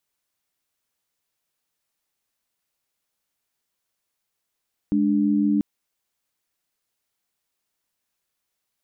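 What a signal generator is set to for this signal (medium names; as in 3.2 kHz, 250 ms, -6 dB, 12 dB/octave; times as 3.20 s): chord G#3/D4 sine, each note -20 dBFS 0.69 s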